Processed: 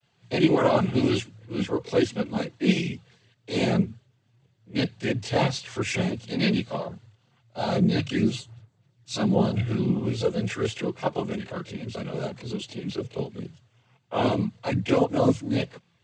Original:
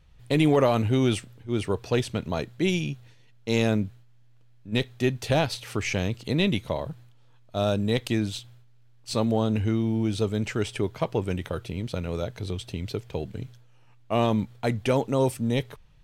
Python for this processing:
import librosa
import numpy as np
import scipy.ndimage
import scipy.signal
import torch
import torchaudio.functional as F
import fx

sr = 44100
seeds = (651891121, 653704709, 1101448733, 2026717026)

y = fx.vibrato(x, sr, rate_hz=0.92, depth_cents=33.0)
y = fx.noise_vocoder(y, sr, seeds[0], bands=16)
y = fx.chorus_voices(y, sr, voices=6, hz=0.97, base_ms=25, depth_ms=3.0, mix_pct=65)
y = F.gain(torch.from_numpy(y), 3.5).numpy()